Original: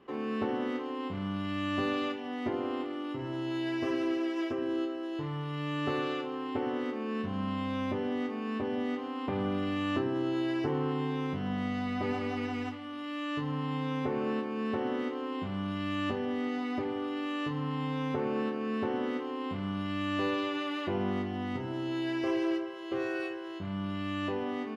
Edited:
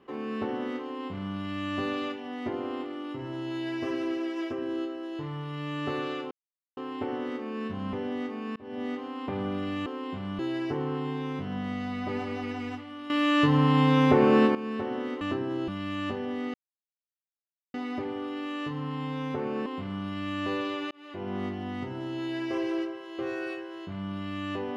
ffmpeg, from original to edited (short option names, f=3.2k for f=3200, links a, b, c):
-filter_complex "[0:a]asplit=13[a][b][c][d][e][f][g][h][i][j][k][l][m];[a]atrim=end=6.31,asetpts=PTS-STARTPTS,afade=t=out:st=6.306:d=0.004:c=hsin,apad=pad_dur=0.46[n];[b]atrim=start=6.31:end=7.472,asetpts=PTS-STARTPTS,afade=t=in:d=0.004:c=hsin[o];[c]atrim=start=7.928:end=8.56,asetpts=PTS-STARTPTS,afade=t=out:st=0.628:d=0.004:c=hsin[p];[d]atrim=start=8.56:end=9.862,asetpts=PTS-STARTPTS,afade=t=in:d=0.29[q];[e]atrim=start=15.148:end=15.682[r];[f]atrim=start=10.328:end=13.042[s];[g]atrim=start=13.038:end=14.492,asetpts=PTS-STARTPTS,volume=12dB[t];[h]atrim=start=14.488:end=15.152[u];[i]atrim=start=9.858:end=10.332[v];[j]atrim=start=15.678:end=16.54,asetpts=PTS-STARTPTS,afade=t=out:st=0.858:d=0.004:c=hsin,apad=pad_dur=1.2[w];[k]atrim=start=16.54:end=18.462,asetpts=PTS-STARTPTS,afade=t=in:d=0.004:c=hsin[x];[l]atrim=start=19.388:end=20.64,asetpts=PTS-STARTPTS,afade=t=out:st=1.248:d=0.004:c=hsin[y];[m]atrim=start=20.64,asetpts=PTS-STARTPTS,afade=t=in:d=0.53[z];[n][o]concat=n=2:v=0:a=1[aa];[p][q]concat=n=2:v=0:a=1[ab];[aa][ab]acrossfade=d=0.004:c1=hsin:c2=hsin[ac];[ac][r]acrossfade=d=0.004:c1=hsin:c2=hsin[ad];[ad][s]acrossfade=d=0.004:c1=hsin:c2=hsin[ae];[ae][t]acrossfade=d=0.004:c1=hsin:c2=hsin[af];[af][u]acrossfade=d=0.004:c1=hsin:c2=hsin[ag];[ag][v]acrossfade=d=0.004:c1=hsin:c2=hsin[ah];[w][x]concat=n=2:v=0:a=1[ai];[ah][ai]acrossfade=d=0.004:c1=hsin:c2=hsin[aj];[y][z]concat=n=2:v=0:a=1[ak];[aj][ak]acrossfade=d=0.004:c1=hsin:c2=hsin"